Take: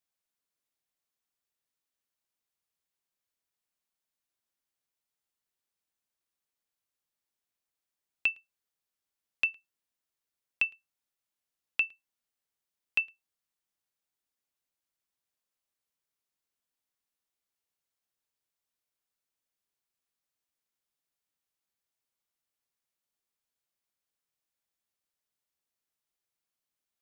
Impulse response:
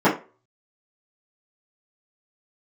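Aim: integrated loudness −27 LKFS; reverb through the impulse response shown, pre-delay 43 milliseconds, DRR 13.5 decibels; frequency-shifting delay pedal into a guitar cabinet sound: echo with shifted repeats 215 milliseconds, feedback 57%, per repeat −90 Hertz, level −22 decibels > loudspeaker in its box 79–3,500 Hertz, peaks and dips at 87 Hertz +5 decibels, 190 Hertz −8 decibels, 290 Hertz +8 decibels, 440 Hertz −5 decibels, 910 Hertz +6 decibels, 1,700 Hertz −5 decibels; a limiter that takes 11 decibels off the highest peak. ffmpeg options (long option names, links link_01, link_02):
-filter_complex "[0:a]alimiter=level_in=3dB:limit=-24dB:level=0:latency=1,volume=-3dB,asplit=2[link_01][link_02];[1:a]atrim=start_sample=2205,adelay=43[link_03];[link_02][link_03]afir=irnorm=-1:irlink=0,volume=-35dB[link_04];[link_01][link_04]amix=inputs=2:normalize=0,asplit=5[link_05][link_06][link_07][link_08][link_09];[link_06]adelay=215,afreqshift=-90,volume=-22dB[link_10];[link_07]adelay=430,afreqshift=-180,volume=-26.9dB[link_11];[link_08]adelay=645,afreqshift=-270,volume=-31.8dB[link_12];[link_09]adelay=860,afreqshift=-360,volume=-36.6dB[link_13];[link_05][link_10][link_11][link_12][link_13]amix=inputs=5:normalize=0,highpass=79,equalizer=frequency=87:width_type=q:width=4:gain=5,equalizer=frequency=190:width_type=q:width=4:gain=-8,equalizer=frequency=290:width_type=q:width=4:gain=8,equalizer=frequency=440:width_type=q:width=4:gain=-5,equalizer=frequency=910:width_type=q:width=4:gain=6,equalizer=frequency=1700:width_type=q:width=4:gain=-5,lowpass=frequency=3500:width=0.5412,lowpass=frequency=3500:width=1.3066,volume=12.5dB"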